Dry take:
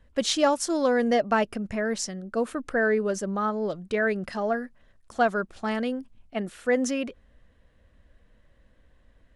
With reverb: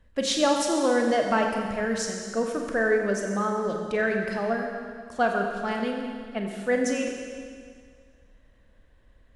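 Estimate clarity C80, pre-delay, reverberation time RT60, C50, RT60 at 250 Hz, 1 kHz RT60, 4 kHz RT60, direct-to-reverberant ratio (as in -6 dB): 4.0 dB, 30 ms, 1.9 s, 3.0 dB, 1.9 s, 1.9 s, 1.9 s, 1.5 dB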